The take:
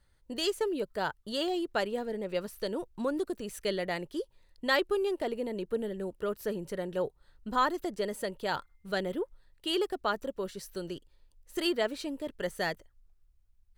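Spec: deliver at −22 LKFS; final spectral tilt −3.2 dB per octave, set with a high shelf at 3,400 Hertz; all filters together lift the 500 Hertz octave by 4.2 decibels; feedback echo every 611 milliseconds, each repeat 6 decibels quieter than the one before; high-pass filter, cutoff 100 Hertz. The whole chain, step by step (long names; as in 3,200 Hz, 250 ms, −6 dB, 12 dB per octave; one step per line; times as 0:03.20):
high-pass filter 100 Hz
parametric band 500 Hz +5.5 dB
high-shelf EQ 3,400 Hz −6 dB
repeating echo 611 ms, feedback 50%, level −6 dB
level +8 dB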